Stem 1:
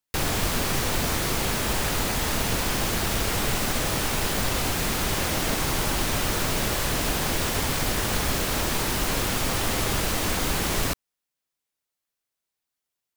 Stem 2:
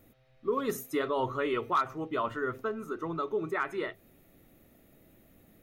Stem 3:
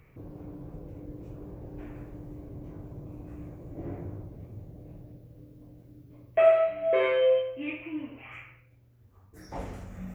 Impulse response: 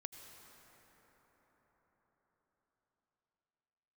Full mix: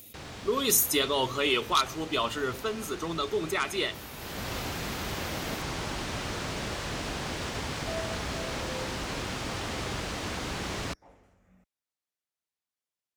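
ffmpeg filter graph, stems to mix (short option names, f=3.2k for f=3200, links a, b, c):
-filter_complex "[0:a]acrossover=split=7800[a][b];[b]acompressor=threshold=-46dB:ratio=4:attack=1:release=60[c];[a][c]amix=inputs=2:normalize=0,volume=-7dB,afade=t=in:st=4.14:d=0.39:silence=0.354813[d];[1:a]aexciter=amount=7.3:drive=5.9:freq=2.5k,acompressor=mode=upward:threshold=-47dB:ratio=2.5,volume=1.5dB[e];[2:a]equalizer=f=120:w=0.56:g=-7.5,adelay=1500,volume=-17dB[f];[d][e][f]amix=inputs=3:normalize=0,highpass=49,highshelf=f=12k:g=-8.5"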